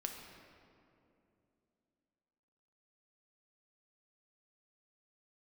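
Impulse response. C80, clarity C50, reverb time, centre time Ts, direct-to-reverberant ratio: 5.0 dB, 4.0 dB, 2.8 s, 65 ms, 2.0 dB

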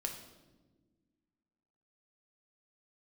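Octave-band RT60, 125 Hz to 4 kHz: 2.0 s, 2.3 s, 1.7 s, 1.0 s, 0.85 s, 0.85 s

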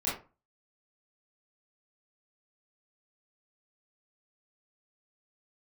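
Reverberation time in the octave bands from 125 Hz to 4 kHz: 0.40 s, 0.35 s, 0.35 s, 0.35 s, 0.25 s, 0.20 s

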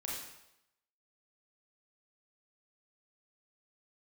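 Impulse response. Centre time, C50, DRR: 64 ms, 0.5 dB, -4.5 dB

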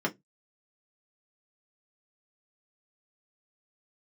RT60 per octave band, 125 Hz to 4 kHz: 0.30 s, 0.20 s, 0.20 s, 0.10 s, 0.15 s, 0.15 s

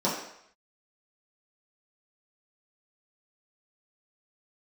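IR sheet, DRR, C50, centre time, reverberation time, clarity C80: -8.5 dB, 4.0 dB, 45 ms, 0.70 s, 6.5 dB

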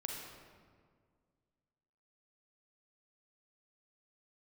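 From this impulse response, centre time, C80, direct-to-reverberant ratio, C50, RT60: 79 ms, 3.0 dB, -0.5 dB, 1.0 dB, 1.9 s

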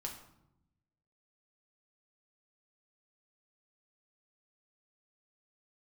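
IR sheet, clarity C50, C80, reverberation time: 7.5 dB, 10.5 dB, 0.85 s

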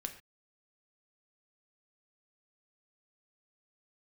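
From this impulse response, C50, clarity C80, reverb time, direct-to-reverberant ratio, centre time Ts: 11.0 dB, 14.0 dB, no single decay rate, 5.0 dB, 11 ms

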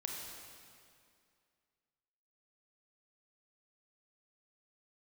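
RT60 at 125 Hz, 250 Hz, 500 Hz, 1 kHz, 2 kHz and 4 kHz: 2.2 s, 2.4 s, 2.3 s, 2.3 s, 2.2 s, 2.0 s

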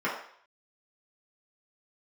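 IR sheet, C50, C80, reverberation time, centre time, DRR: 4.5 dB, 8.0 dB, 0.60 s, 37 ms, -6.5 dB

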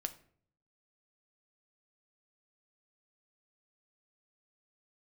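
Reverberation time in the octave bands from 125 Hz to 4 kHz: 0.90 s, 0.75 s, 0.60 s, 0.50 s, 0.45 s, 0.35 s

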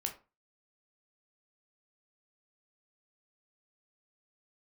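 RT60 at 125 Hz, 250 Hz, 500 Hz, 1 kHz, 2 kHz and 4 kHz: 0.35 s, 0.35 s, 0.30 s, 0.30 s, 0.25 s, 0.20 s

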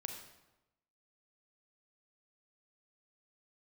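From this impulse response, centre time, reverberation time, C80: 30 ms, 1.0 s, 7.5 dB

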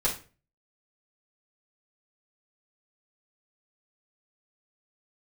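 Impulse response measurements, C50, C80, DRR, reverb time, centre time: 10.0 dB, 16.0 dB, -6.5 dB, 0.35 s, 18 ms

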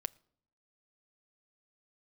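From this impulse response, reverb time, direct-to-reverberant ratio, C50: 0.65 s, 14.5 dB, 26.0 dB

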